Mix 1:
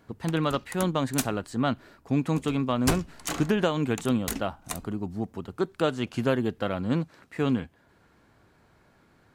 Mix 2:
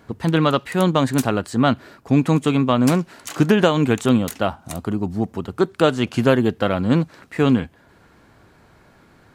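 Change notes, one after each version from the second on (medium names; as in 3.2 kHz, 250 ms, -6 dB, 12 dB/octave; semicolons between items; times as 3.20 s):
speech +9.0 dB; background: add high-pass 1.2 kHz 6 dB/octave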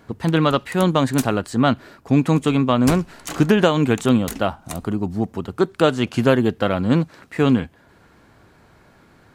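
background: remove high-pass 1.2 kHz 6 dB/octave; reverb: on, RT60 0.60 s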